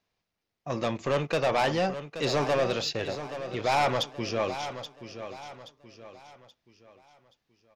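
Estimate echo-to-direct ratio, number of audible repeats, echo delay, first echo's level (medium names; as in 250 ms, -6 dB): -10.5 dB, 3, 827 ms, -11.0 dB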